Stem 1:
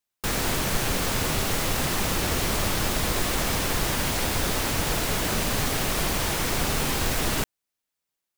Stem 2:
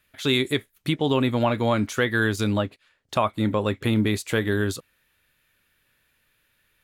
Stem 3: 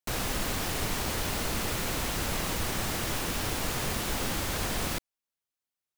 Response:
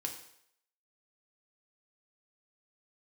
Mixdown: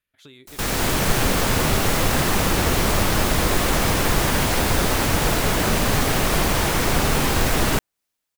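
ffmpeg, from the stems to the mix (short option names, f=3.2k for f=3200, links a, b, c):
-filter_complex "[0:a]adynamicequalizer=threshold=0.00631:dfrequency=2300:dqfactor=0.7:tfrequency=2300:tqfactor=0.7:attack=5:release=100:ratio=0.375:range=2:mode=cutabove:tftype=highshelf,adelay=350,volume=-2.5dB[a];[1:a]acompressor=threshold=-26dB:ratio=12,volume=-17.5dB[b];[2:a]highshelf=f=4.7k:g=10,adelay=400,volume=-18dB[c];[a][b][c]amix=inputs=3:normalize=0,dynaudnorm=f=130:g=11:m=9.5dB"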